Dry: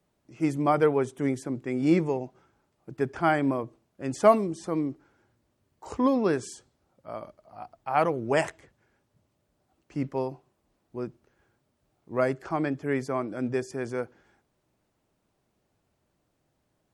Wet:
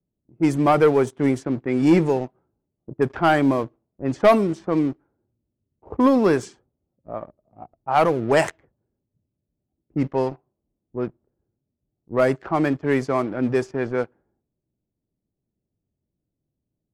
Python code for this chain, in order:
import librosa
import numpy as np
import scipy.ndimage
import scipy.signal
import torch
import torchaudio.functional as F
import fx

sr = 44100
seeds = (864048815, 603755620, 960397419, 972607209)

y = fx.leveller(x, sr, passes=2)
y = fx.env_lowpass(y, sr, base_hz=310.0, full_db=-16.0)